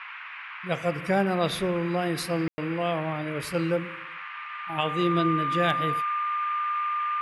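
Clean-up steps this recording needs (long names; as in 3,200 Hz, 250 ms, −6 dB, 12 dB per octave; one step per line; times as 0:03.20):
clipped peaks rebuilt −12.5 dBFS
notch filter 1,200 Hz, Q 30
ambience match 0:02.48–0:02.58
noise reduction from a noise print 30 dB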